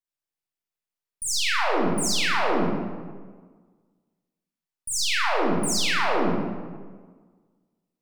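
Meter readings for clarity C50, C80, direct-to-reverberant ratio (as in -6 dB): -2.5 dB, 0.5 dB, -5.5 dB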